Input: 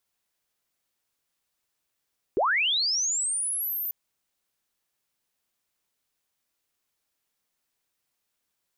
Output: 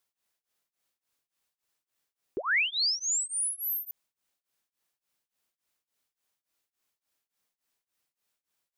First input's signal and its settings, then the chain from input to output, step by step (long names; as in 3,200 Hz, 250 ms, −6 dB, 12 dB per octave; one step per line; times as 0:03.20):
glide linear 320 Hz → 14,000 Hz −20 dBFS → −28 dBFS 1.54 s
low-shelf EQ 170 Hz −4 dB
tremolo along a rectified sine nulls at 3.5 Hz